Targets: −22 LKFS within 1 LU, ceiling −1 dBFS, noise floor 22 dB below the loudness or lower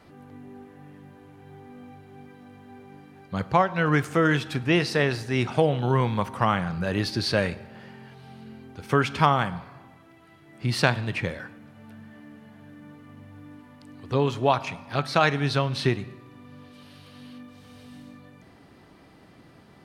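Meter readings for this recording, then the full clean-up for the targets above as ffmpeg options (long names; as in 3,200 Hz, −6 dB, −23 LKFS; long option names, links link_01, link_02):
integrated loudness −24.5 LKFS; sample peak −2.0 dBFS; target loudness −22.0 LKFS
→ -af "volume=2.5dB,alimiter=limit=-1dB:level=0:latency=1"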